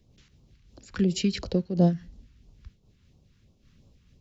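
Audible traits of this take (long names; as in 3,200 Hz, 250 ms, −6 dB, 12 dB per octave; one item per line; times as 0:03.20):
phaser sweep stages 2, 2.9 Hz, lowest notch 610–1,700 Hz
amplitude modulation by smooth noise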